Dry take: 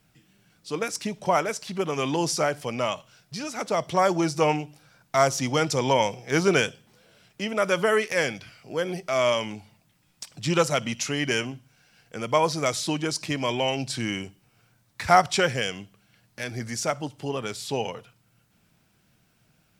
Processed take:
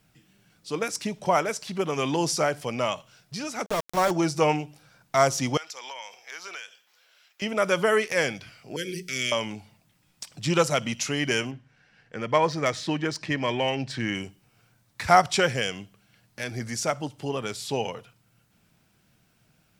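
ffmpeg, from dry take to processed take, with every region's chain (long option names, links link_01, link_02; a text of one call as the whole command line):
ffmpeg -i in.wav -filter_complex "[0:a]asettb=1/sr,asplit=3[link_01][link_02][link_03];[link_01]atrim=end=3.664[link_04];[link_02]atrim=start=3.66:end=4.11,asetpts=PTS-STARTPTS,afade=type=in:duration=0.004:curve=qsin,afade=type=out:start_time=0.446:duration=0.004:curve=qsin,tremolo=f=180:d=0.4,aeval=exprs='val(0)*gte(abs(val(0)),0.0447)':channel_layout=same[link_05];[link_03]atrim=start=4.106[link_06];[link_04][link_05]acrossfade=duration=0.004:curve1=hsin:curve2=qsin[link_07];[link_07][link_06]acrossfade=duration=0.004:curve1=qsin:curve2=hsin,asettb=1/sr,asplit=3[link_08][link_09][link_10];[link_08]atrim=end=5.574[link_11];[link_09]atrim=start=5.57:end=7.42,asetpts=PTS-STARTPTS,afade=type=in:duration=0.004:curve=qsin,afade=type=out:start_time=1.846:duration=0.004:curve=qsin,highpass=1200,equalizer=frequency=9000:width=4.8:gain=-15,acompressor=threshold=-36dB:ratio=5:attack=3.2:release=140:knee=1:detection=peak[link_12];[link_10]atrim=start=7.416[link_13];[link_11][link_12]acrossfade=duration=0.004:curve1=hsin:curve2=qsin[link_14];[link_14][link_13]acrossfade=duration=0.004:curve1=qsin:curve2=hsin,asettb=1/sr,asplit=3[link_15][link_16][link_17];[link_15]atrim=end=8.764[link_18];[link_16]atrim=start=8.76:end=9.32,asetpts=PTS-STARTPTS,afade=type=in:duration=0.004:curve=qsin,afade=type=out:start_time=0.556:duration=0.004:curve=qsin,asuperstop=centerf=850:order=8:qfactor=0.68,highshelf=frequency=4100:gain=7.5,bandreject=frequency=60:width_type=h:width=6,bandreject=frequency=120:width_type=h:width=6,bandreject=frequency=180:width_type=h:width=6,bandreject=frequency=240:width_type=h:width=6,bandreject=frequency=300:width_type=h:width=6,bandreject=frequency=360:width_type=h:width=6,bandreject=frequency=420:width_type=h:width=6,bandreject=frequency=480:width_type=h:width=6,bandreject=frequency=540:width_type=h:width=6[link_19];[link_17]atrim=start=9.316[link_20];[link_18][link_19]acrossfade=duration=0.004:curve1=hsin:curve2=qsin[link_21];[link_21][link_20]acrossfade=duration=0.004:curve1=qsin:curve2=hsin,asettb=1/sr,asplit=3[link_22][link_23][link_24];[link_22]atrim=end=11.514[link_25];[link_23]atrim=start=11.51:end=14.15,asetpts=PTS-STARTPTS,afade=type=in:duration=0.004:curve=qsin,afade=type=out:start_time=2.636:duration=0.004:curve=qsin,equalizer=frequency=1800:width_type=o:width=0.24:gain=9,bandreject=frequency=690:width=18,adynamicsmooth=sensitivity=1:basefreq=4300[link_26];[link_24]atrim=start=14.146[link_27];[link_25][link_26]acrossfade=duration=0.004:curve1=hsin:curve2=qsin[link_28];[link_28][link_27]acrossfade=duration=0.004:curve1=qsin:curve2=hsin" out.wav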